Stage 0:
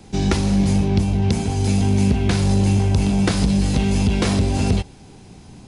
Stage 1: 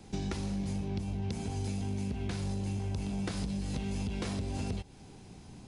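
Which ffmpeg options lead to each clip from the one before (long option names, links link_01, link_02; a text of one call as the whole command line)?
ffmpeg -i in.wav -af "acompressor=threshold=-24dB:ratio=6,volume=-8dB" out.wav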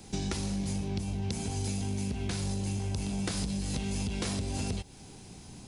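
ffmpeg -i in.wav -af "highshelf=frequency=4400:gain=10.5,volume=1.5dB" out.wav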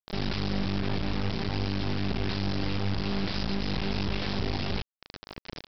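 ffmpeg -i in.wav -af "alimiter=level_in=3dB:limit=-24dB:level=0:latency=1:release=37,volume=-3dB,aresample=11025,acrusher=bits=4:dc=4:mix=0:aa=0.000001,aresample=44100,volume=9dB" out.wav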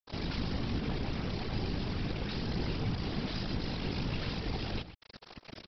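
ffmpeg -i in.wav -filter_complex "[0:a]asplit=2[link_01][link_02];[link_02]adelay=122.4,volume=-12dB,highshelf=frequency=4000:gain=-2.76[link_03];[link_01][link_03]amix=inputs=2:normalize=0,afftfilt=real='hypot(re,im)*cos(2*PI*random(0))':imag='hypot(re,im)*sin(2*PI*random(1))':win_size=512:overlap=0.75" out.wav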